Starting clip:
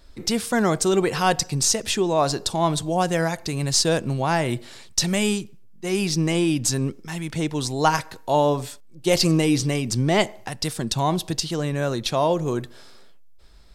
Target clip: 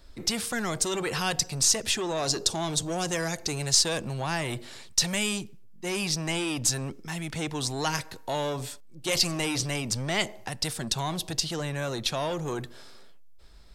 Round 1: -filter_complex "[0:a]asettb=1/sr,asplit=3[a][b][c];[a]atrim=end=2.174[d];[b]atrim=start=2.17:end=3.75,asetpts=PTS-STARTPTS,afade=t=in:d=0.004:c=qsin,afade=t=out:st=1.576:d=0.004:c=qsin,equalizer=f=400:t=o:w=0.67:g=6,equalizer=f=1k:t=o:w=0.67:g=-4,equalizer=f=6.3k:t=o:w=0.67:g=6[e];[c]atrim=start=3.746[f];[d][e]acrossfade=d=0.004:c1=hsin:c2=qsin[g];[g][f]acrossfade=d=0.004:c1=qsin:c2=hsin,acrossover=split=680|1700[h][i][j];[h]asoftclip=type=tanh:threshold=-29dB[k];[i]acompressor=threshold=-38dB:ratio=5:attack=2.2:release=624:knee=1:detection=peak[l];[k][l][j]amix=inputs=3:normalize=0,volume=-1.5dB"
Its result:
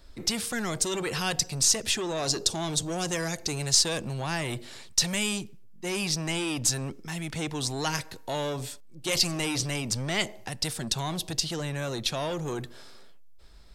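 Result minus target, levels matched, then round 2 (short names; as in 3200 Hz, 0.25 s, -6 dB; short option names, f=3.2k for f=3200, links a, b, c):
compressor: peak gain reduction +5 dB
-filter_complex "[0:a]asettb=1/sr,asplit=3[a][b][c];[a]atrim=end=2.174[d];[b]atrim=start=2.17:end=3.75,asetpts=PTS-STARTPTS,afade=t=in:d=0.004:c=qsin,afade=t=out:st=1.576:d=0.004:c=qsin,equalizer=f=400:t=o:w=0.67:g=6,equalizer=f=1k:t=o:w=0.67:g=-4,equalizer=f=6.3k:t=o:w=0.67:g=6[e];[c]atrim=start=3.746[f];[d][e]acrossfade=d=0.004:c1=hsin:c2=qsin[g];[g][f]acrossfade=d=0.004:c1=qsin:c2=hsin,acrossover=split=680|1700[h][i][j];[h]asoftclip=type=tanh:threshold=-29dB[k];[i]acompressor=threshold=-31.5dB:ratio=5:attack=2.2:release=624:knee=1:detection=peak[l];[k][l][j]amix=inputs=3:normalize=0,volume=-1.5dB"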